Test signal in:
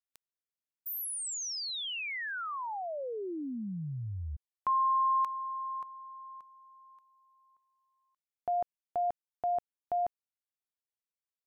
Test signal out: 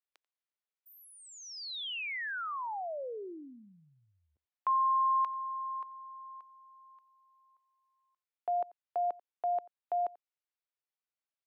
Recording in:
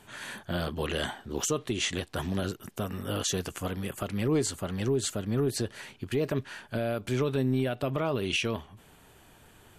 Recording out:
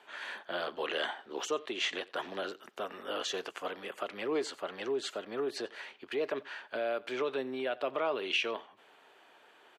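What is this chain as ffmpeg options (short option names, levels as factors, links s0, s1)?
-filter_complex "[0:a]highpass=230,acrossover=split=360 4500:gain=0.0891 1 0.1[s0][s1][s2];[s0][s1][s2]amix=inputs=3:normalize=0,aecho=1:1:89:0.075"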